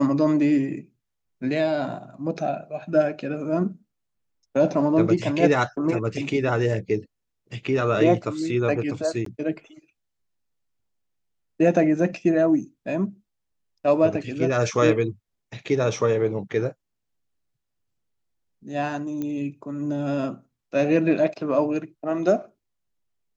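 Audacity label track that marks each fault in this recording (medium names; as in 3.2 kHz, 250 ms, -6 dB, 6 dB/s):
9.250000	9.260000	dropout 13 ms
19.220000	19.220000	pop -18 dBFS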